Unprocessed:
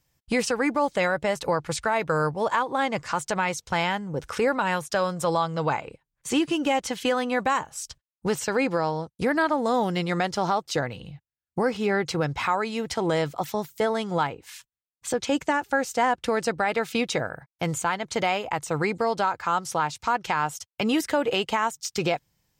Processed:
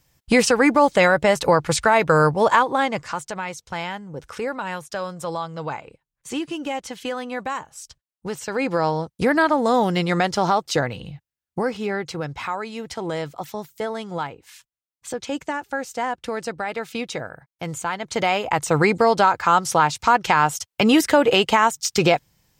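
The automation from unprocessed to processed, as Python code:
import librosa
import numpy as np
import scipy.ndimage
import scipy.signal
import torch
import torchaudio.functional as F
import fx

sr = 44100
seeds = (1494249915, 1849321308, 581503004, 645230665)

y = fx.gain(x, sr, db=fx.line((2.57, 8.0), (3.34, -4.0), (8.39, -4.0), (8.85, 5.0), (11.07, 5.0), (12.1, -3.0), (17.65, -3.0), (18.66, 8.0)))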